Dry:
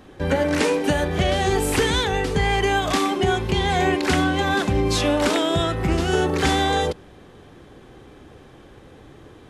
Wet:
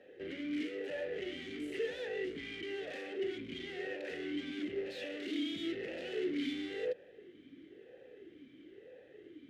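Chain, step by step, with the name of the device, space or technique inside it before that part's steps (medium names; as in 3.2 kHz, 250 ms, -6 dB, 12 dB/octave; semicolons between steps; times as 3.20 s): 4.86–6.53 s: graphic EQ 250/2000/4000 Hz +9/+4/+11 dB; talk box (valve stage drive 30 dB, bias 0.45; talking filter e-i 1 Hz); trim +2.5 dB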